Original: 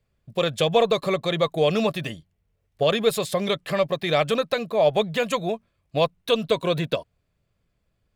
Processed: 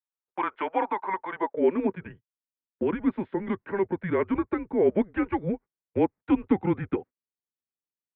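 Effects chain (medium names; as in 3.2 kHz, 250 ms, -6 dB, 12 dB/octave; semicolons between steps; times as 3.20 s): high-pass 180 Hz 6 dB/octave; gate -38 dBFS, range -26 dB; high-pass sweep 1.1 kHz -> 280 Hz, 1.26–2.14 s; mistuned SSB -190 Hz 320–2200 Hz; gain riding 2 s; trim -4.5 dB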